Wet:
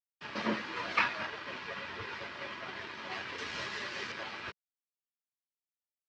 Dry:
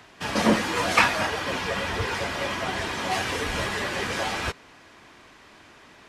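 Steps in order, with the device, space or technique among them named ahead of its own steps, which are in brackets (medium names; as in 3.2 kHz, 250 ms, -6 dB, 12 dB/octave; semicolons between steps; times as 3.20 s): 3.38–4.12 s: peaking EQ 6.8 kHz +11.5 dB 1.4 oct; blown loudspeaker (crossover distortion -36.5 dBFS; cabinet simulation 160–4500 Hz, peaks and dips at 180 Hz -6 dB, 280 Hz -6 dB, 490 Hz -6 dB, 750 Hz -9 dB, 3.4 kHz -3 dB); trim -8 dB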